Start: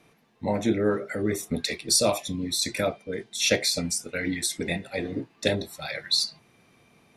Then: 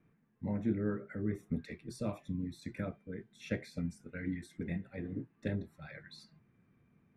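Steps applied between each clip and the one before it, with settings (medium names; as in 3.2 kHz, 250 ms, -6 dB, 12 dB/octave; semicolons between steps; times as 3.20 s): FFT filter 190 Hz 0 dB, 730 Hz -16 dB, 1.6 kHz -8 dB, 4.5 kHz -28 dB; trim -4.5 dB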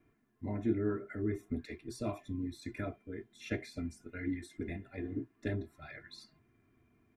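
comb 2.9 ms, depth 76%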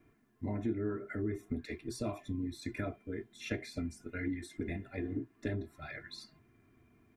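compression 2.5:1, threshold -38 dBFS, peak gain reduction 8.5 dB; trim +4 dB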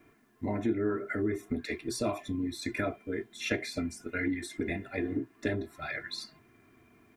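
bass shelf 220 Hz -10.5 dB; trim +9 dB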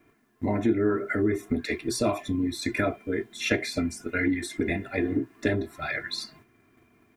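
gate -59 dBFS, range -7 dB; trim +6 dB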